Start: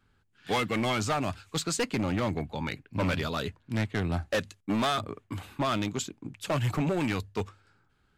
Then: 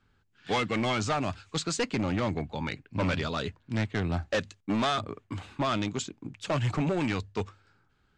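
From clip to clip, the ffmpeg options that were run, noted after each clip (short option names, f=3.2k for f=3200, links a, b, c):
-af "lowpass=f=7.7k:w=0.5412,lowpass=f=7.7k:w=1.3066"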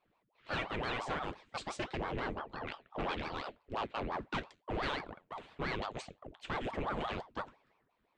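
-af "flanger=delay=8.8:depth=4.4:regen=-74:speed=0.52:shape=triangular,highshelf=f=4k:t=q:w=1.5:g=-6.5,aeval=exprs='val(0)*sin(2*PI*580*n/s+580*0.8/5.8*sin(2*PI*5.8*n/s))':c=same,volume=-2dB"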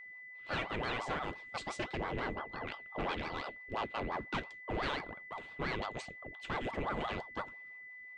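-af "aeval=exprs='val(0)+0.00398*sin(2*PI*2000*n/s)':c=same"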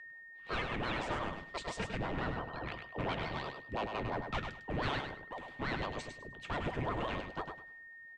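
-filter_complex "[0:a]afreqshift=-160,asplit=2[a][b];[b]aecho=0:1:102|204|306:0.473|0.104|0.0229[c];[a][c]amix=inputs=2:normalize=0"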